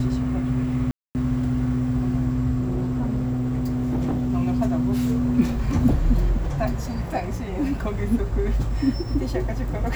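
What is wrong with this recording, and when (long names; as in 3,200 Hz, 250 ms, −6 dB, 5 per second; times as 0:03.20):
0:00.91–0:01.15: drop-out 239 ms
0:02.62–0:04.30: clipping −20 dBFS
0:05.71: drop-out 2.3 ms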